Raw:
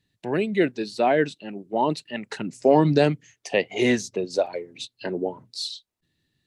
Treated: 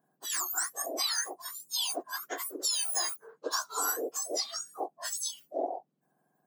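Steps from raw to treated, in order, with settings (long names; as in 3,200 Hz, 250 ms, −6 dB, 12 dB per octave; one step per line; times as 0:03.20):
frequency axis turned over on the octave scale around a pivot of 1,700 Hz
downward compressor 5 to 1, threshold −28 dBFS, peak gain reduction 8.5 dB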